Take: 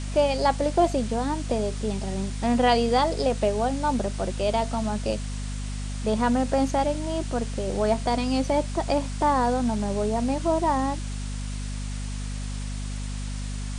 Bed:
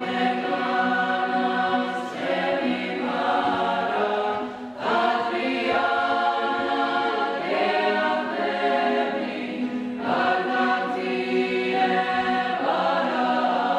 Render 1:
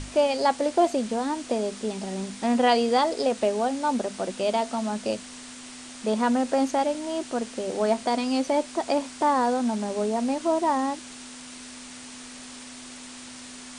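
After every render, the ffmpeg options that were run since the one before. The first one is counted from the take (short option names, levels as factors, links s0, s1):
-af "bandreject=f=50:t=h:w=6,bandreject=f=100:t=h:w=6,bandreject=f=150:t=h:w=6,bandreject=f=200:t=h:w=6"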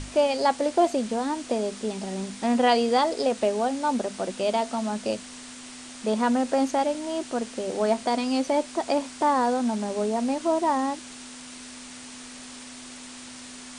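-af anull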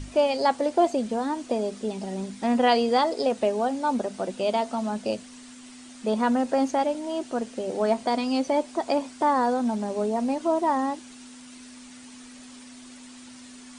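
-af "afftdn=nr=8:nf=-42"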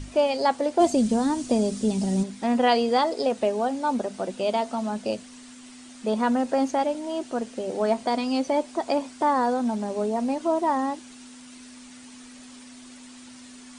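-filter_complex "[0:a]asplit=3[s0][s1][s2];[s0]afade=t=out:st=0.79:d=0.02[s3];[s1]bass=f=250:g=14,treble=f=4000:g=10,afade=t=in:st=0.79:d=0.02,afade=t=out:st=2.22:d=0.02[s4];[s2]afade=t=in:st=2.22:d=0.02[s5];[s3][s4][s5]amix=inputs=3:normalize=0"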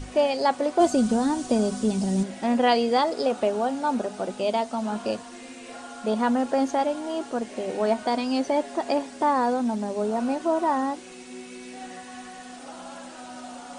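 -filter_complex "[1:a]volume=0.106[s0];[0:a][s0]amix=inputs=2:normalize=0"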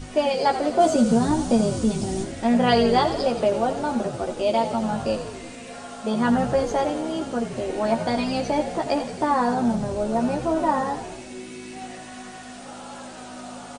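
-filter_complex "[0:a]asplit=2[s0][s1];[s1]adelay=13,volume=0.708[s2];[s0][s2]amix=inputs=2:normalize=0,asplit=9[s3][s4][s5][s6][s7][s8][s9][s10][s11];[s4]adelay=87,afreqshift=-54,volume=0.316[s12];[s5]adelay=174,afreqshift=-108,volume=0.202[s13];[s6]adelay=261,afreqshift=-162,volume=0.129[s14];[s7]adelay=348,afreqshift=-216,volume=0.0832[s15];[s8]adelay=435,afreqshift=-270,volume=0.0531[s16];[s9]adelay=522,afreqshift=-324,volume=0.0339[s17];[s10]adelay=609,afreqshift=-378,volume=0.0216[s18];[s11]adelay=696,afreqshift=-432,volume=0.014[s19];[s3][s12][s13][s14][s15][s16][s17][s18][s19]amix=inputs=9:normalize=0"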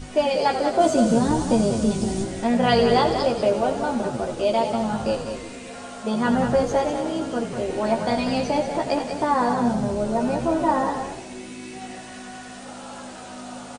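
-filter_complex "[0:a]asplit=2[s0][s1];[s1]adelay=15,volume=0.251[s2];[s0][s2]amix=inputs=2:normalize=0,aecho=1:1:193:0.398"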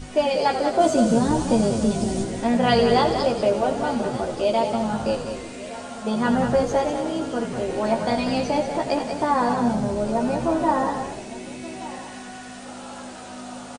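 -af "aecho=1:1:1172:0.141"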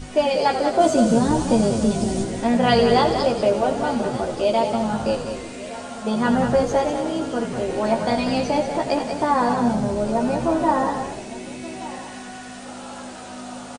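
-af "volume=1.19"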